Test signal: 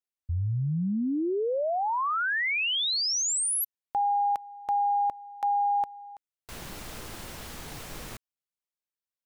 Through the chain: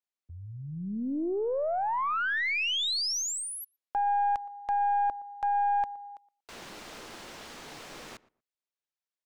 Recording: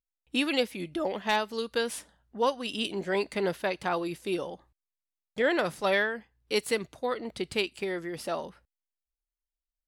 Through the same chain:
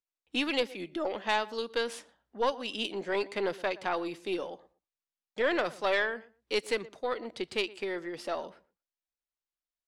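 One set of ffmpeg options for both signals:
ffmpeg -i in.wav -filter_complex "[0:a]acrossover=split=210 7500:gain=0.178 1 0.224[link_01][link_02][link_03];[link_01][link_02][link_03]amix=inputs=3:normalize=0,asplit=2[link_04][link_05];[link_05]adelay=118,lowpass=frequency=1500:poles=1,volume=-19dB,asplit=2[link_06][link_07];[link_07]adelay=118,lowpass=frequency=1500:poles=1,volume=0.17[link_08];[link_04][link_06][link_08]amix=inputs=3:normalize=0,aeval=exprs='(tanh(6.31*val(0)+0.4)-tanh(0.4))/6.31':channel_layout=same" out.wav

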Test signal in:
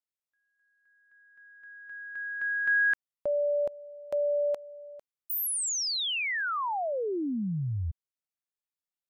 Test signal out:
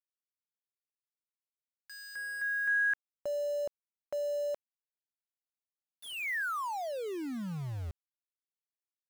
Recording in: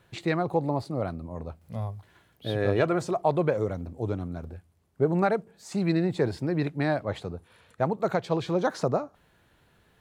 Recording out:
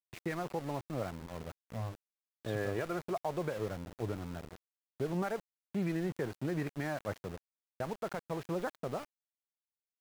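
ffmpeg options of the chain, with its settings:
ffmpeg -i in.wav -af "lowpass=frequency=2000:width_type=q:width=1.5,alimiter=limit=-18.5dB:level=0:latency=1:release=221,aeval=exprs='val(0)*gte(abs(val(0)),0.0158)':channel_layout=same,volume=-6.5dB" out.wav

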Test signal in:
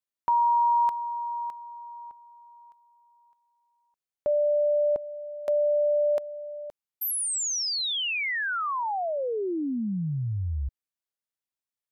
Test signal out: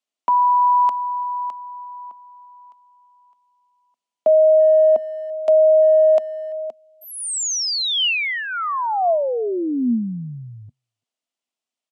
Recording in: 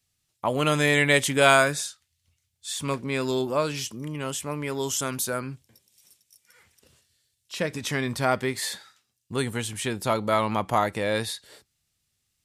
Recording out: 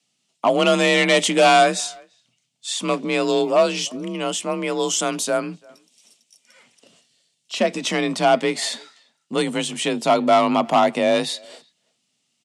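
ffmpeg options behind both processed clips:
ffmpeg -i in.wav -filter_complex "[0:a]asoftclip=type=hard:threshold=-18.5dB,highpass=180,equalizer=frequency=200:width_type=q:width=4:gain=8,equalizer=frequency=640:width_type=q:width=4:gain=7,equalizer=frequency=1600:width_type=q:width=4:gain=-6,equalizer=frequency=2900:width_type=q:width=4:gain=5,lowpass=frequency=8700:width=0.5412,lowpass=frequency=8700:width=1.3066,asplit=2[link_01][link_02];[link_02]adelay=340,highpass=300,lowpass=3400,asoftclip=type=hard:threshold=-18dB,volume=-26dB[link_03];[link_01][link_03]amix=inputs=2:normalize=0,afreqshift=37,volume=6dB" out.wav

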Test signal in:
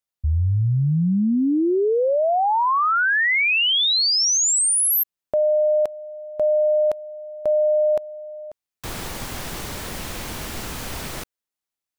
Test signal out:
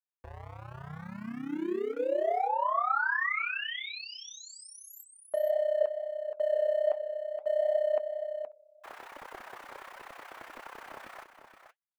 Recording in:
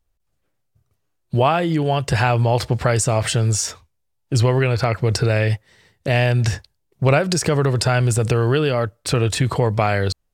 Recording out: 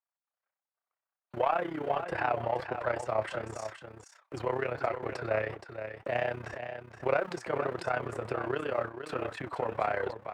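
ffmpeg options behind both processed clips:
ffmpeg -i in.wav -filter_complex "[0:a]bandreject=frequency=460:width=12,acrossover=split=630|1900[link_01][link_02][link_03];[link_01]aeval=exprs='val(0)*gte(abs(val(0)),0.0422)':channel_layout=same[link_04];[link_04][link_02][link_03]amix=inputs=3:normalize=0,acrossover=split=350 2100:gain=0.112 1 0.1[link_05][link_06][link_07];[link_05][link_06][link_07]amix=inputs=3:normalize=0,asoftclip=type=tanh:threshold=-9.5dB,tremolo=f=32:d=0.824,flanger=delay=1.9:depth=7.4:regen=70:speed=1.4:shape=sinusoidal,aecho=1:1:472:0.355,adynamicequalizer=threshold=0.00282:dfrequency=5300:dqfactor=0.7:tfrequency=5300:tqfactor=0.7:attack=5:release=100:ratio=0.375:range=2:mode=cutabove:tftype=highshelf" out.wav

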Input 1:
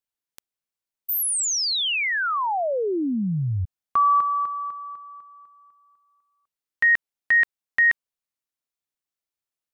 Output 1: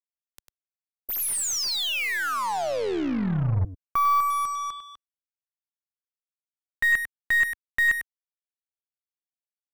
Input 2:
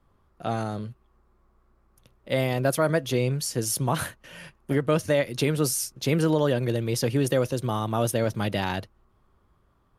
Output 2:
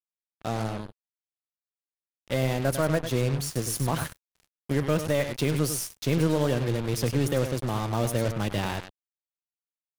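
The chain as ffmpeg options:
ffmpeg -i in.wav -af "aecho=1:1:99:0.335,acrusher=bits=4:mix=0:aa=0.5,lowshelf=frequency=98:gain=10,aeval=exprs='0.422*(cos(1*acos(clip(val(0)/0.422,-1,1)))-cos(1*PI/2))+0.0188*(cos(6*acos(clip(val(0)/0.422,-1,1)))-cos(6*PI/2))':channel_layout=same,volume=-4dB" out.wav

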